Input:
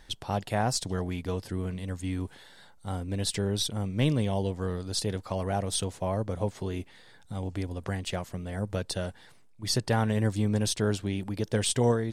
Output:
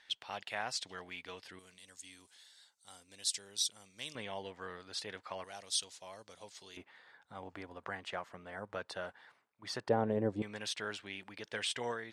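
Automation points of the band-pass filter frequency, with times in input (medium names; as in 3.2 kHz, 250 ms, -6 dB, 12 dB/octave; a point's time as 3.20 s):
band-pass filter, Q 1.2
2.5 kHz
from 1.59 s 6.4 kHz
from 4.15 s 1.9 kHz
from 5.44 s 4.9 kHz
from 6.77 s 1.3 kHz
from 9.89 s 480 Hz
from 10.42 s 2.1 kHz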